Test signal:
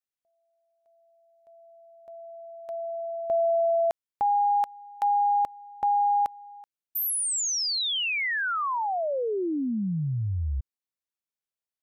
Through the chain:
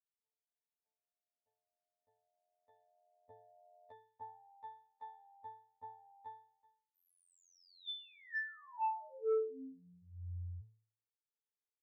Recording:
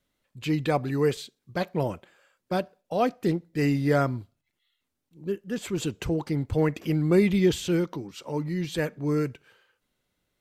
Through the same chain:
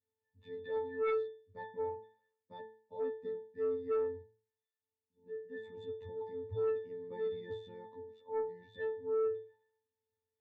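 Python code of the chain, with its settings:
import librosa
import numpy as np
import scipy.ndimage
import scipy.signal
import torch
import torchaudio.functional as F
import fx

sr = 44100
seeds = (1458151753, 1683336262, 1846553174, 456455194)

y = fx.robotise(x, sr, hz=88.3)
y = fx.octave_resonator(y, sr, note='A', decay_s=0.45)
y = fx.cheby_harmonics(y, sr, harmonics=(5,), levels_db=(-9,), full_scale_db=-21.5)
y = y * 10.0 ** (-4.5 / 20.0)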